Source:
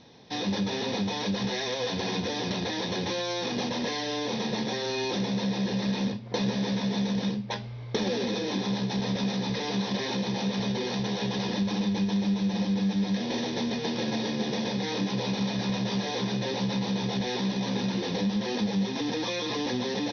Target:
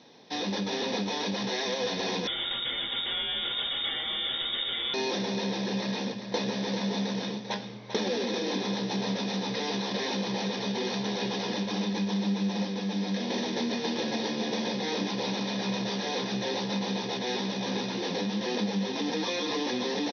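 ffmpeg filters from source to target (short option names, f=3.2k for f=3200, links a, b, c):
-filter_complex "[0:a]highpass=220,aecho=1:1:394|788|1182:0.355|0.0958|0.0259,asettb=1/sr,asplit=3[a][b][c];[a]atrim=end=2.274[d];[b]atrim=start=2.27:end=4.94,asetpts=PTS-STARTPTS,afade=t=in:d=0.004:c=qsin,afade=t=out:st=2.666:d=0.004:c=qsin,lowpass=f=3.3k:t=q:w=0.5098,lowpass=f=3.3k:t=q:w=0.6013,lowpass=f=3.3k:t=q:w=0.9,lowpass=f=3.3k:t=q:w=2.563,afreqshift=-3900[e];[c]atrim=start=4.936[f];[d][e]acrossfade=d=0.004:c1=hsin:c2=qsin[g];[g][f]acrossfade=d=0.004:c1=qsin:c2=hsin"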